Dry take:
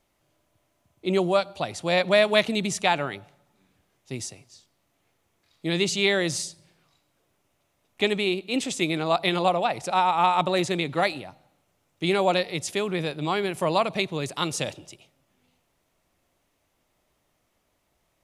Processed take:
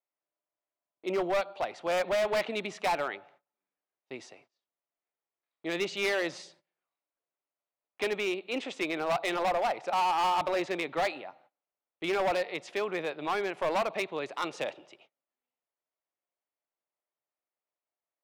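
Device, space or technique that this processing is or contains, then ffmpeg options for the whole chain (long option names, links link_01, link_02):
walkie-talkie: -af "highpass=460,lowpass=2300,asoftclip=type=hard:threshold=-24.5dB,agate=range=-22dB:threshold=-60dB:ratio=16:detection=peak"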